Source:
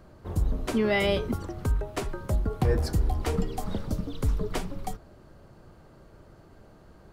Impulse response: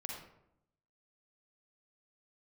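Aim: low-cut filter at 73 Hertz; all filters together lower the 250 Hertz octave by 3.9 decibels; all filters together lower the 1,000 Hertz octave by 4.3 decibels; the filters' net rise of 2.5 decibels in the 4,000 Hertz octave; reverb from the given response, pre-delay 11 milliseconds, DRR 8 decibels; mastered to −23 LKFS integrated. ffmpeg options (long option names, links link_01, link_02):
-filter_complex "[0:a]highpass=73,equalizer=frequency=250:width_type=o:gain=-5,equalizer=frequency=1000:width_type=o:gain=-6,equalizer=frequency=4000:width_type=o:gain=4,asplit=2[link_01][link_02];[1:a]atrim=start_sample=2205,adelay=11[link_03];[link_02][link_03]afir=irnorm=-1:irlink=0,volume=-7dB[link_04];[link_01][link_04]amix=inputs=2:normalize=0,volume=8.5dB"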